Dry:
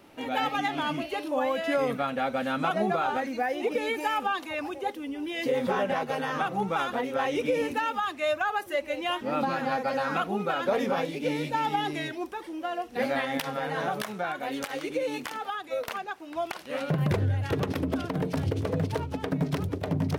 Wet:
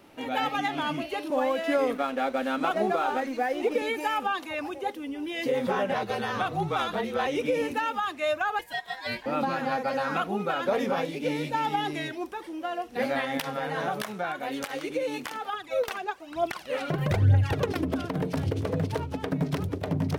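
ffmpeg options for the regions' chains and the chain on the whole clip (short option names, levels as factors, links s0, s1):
-filter_complex "[0:a]asettb=1/sr,asplit=3[s0][s1][s2];[s0]atrim=end=1.304[s3];[s1]atrim=start=1.3:end=3.82,asetpts=PTS-STARTPTS,afade=t=in:d=0.004:c=qsin,afade=t=out:st=2.516:d=0.004:c=qsin,highpass=f=250:w=0.5412,highpass=f=250:w=1.3066,lowshelf=f=370:g=6.5,aeval=exprs='sgn(val(0))*max(abs(val(0))-0.00473,0)':c=same[s4];[s2]atrim=start=3.816[s5];[s3][s4]acrossfade=d=0.004:c1=hsin:c2=qsin[s6];[s6][s5]acrossfade=d=0.004:c1=qsin:c2=hsin,asettb=1/sr,asplit=3[s7][s8][s9];[s7]atrim=end=5.944[s10];[s8]atrim=start=5.94:end=7.27,asetpts=PTS-STARTPTS,afade=t=in:d=0.004:c=qsin,afade=t=out:st=1.326:d=0.004:c=qsin,equalizer=f=4000:t=o:w=0.37:g=8,afreqshift=-37[s11];[s9]atrim=start=7.266[s12];[s10][s11]acrossfade=d=0.004:c1=hsin:c2=qsin[s13];[s13][s12]acrossfade=d=0.004:c1=qsin:c2=hsin,asettb=1/sr,asplit=3[s14][s15][s16];[s14]atrim=end=8.594[s17];[s15]atrim=start=8.59:end=9.26,asetpts=PTS-STARTPTS,afade=t=in:d=0.004:c=qsin,afade=t=out:st=0.666:d=0.004:c=qsin,highpass=450,aeval=exprs='val(0)*sin(2*PI*1300*n/s)':c=same[s18];[s16]atrim=start=9.256[s19];[s17][s18]acrossfade=d=0.004:c1=hsin:c2=qsin[s20];[s20][s19]acrossfade=d=0.004:c1=qsin:c2=hsin,asettb=1/sr,asplit=3[s21][s22][s23];[s21]atrim=end=15.534[s24];[s22]atrim=start=15.53:end=17.85,asetpts=PTS-STARTPTS,afade=t=in:d=0.004:c=qsin,afade=t=out:st=2.316:d=0.004:c=qsin,equalizer=f=12000:w=1.5:g=-3,aphaser=in_gain=1:out_gain=1:delay=3.1:decay=0.61:speed=1.1:type=triangular[s25];[s23]atrim=start=17.846[s26];[s24][s25]acrossfade=d=0.004:c1=hsin:c2=qsin[s27];[s27][s26]acrossfade=d=0.004:c1=qsin:c2=hsin"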